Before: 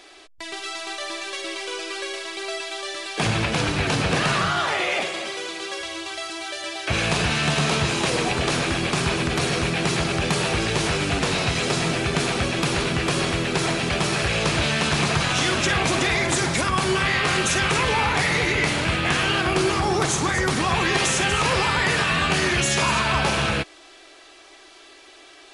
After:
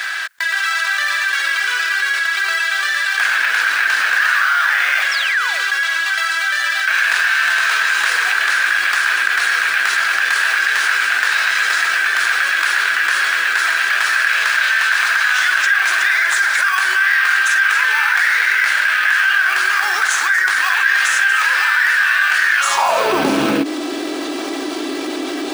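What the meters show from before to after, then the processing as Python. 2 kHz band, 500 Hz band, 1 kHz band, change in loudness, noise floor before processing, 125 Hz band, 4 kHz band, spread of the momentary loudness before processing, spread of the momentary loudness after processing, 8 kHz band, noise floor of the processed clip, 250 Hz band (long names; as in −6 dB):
+13.0 dB, −3.0 dB, +4.5 dB, +7.5 dB, −48 dBFS, below −15 dB, +3.5 dB, 10 LU, 4 LU, +2.5 dB, −23 dBFS, can't be measured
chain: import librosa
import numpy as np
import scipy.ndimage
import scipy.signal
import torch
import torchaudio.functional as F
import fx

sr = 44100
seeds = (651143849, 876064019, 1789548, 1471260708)

p1 = fx.sample_hold(x, sr, seeds[0], rate_hz=3600.0, jitter_pct=0)
p2 = x + F.gain(torch.from_numpy(p1), -6.0).numpy()
p3 = fx.spec_paint(p2, sr, seeds[1], shape='fall', start_s=5.11, length_s=0.52, low_hz=450.0, high_hz=5900.0, level_db=-31.0)
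p4 = fx.filter_sweep_highpass(p3, sr, from_hz=1600.0, to_hz=280.0, start_s=22.57, end_s=23.25, q=7.8)
p5 = fx.env_flatten(p4, sr, amount_pct=70)
y = F.gain(torch.from_numpy(p5), -7.0).numpy()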